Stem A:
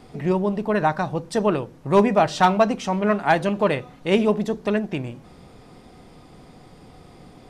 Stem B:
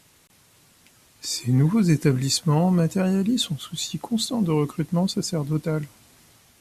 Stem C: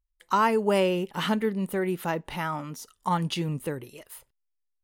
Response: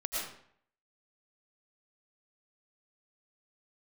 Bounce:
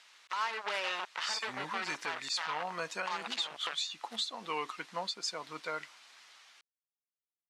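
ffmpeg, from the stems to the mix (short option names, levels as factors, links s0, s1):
-filter_complex "[0:a]acompressor=threshold=0.0224:ratio=2,lowpass=f=1600:w=0.5412,lowpass=f=1600:w=1.3066,asoftclip=type=tanh:threshold=0.0944,volume=0.531[s0];[1:a]volume=0.668[s1];[2:a]volume=1.12[s2];[s0][s2]amix=inputs=2:normalize=0,acrusher=bits=3:mix=0:aa=0.5,acompressor=threshold=0.0447:ratio=6,volume=1[s3];[s1][s3]amix=inputs=2:normalize=0,acontrast=42,asuperpass=centerf=2300:order=4:qfactor=0.57,alimiter=limit=0.0631:level=0:latency=1:release=260"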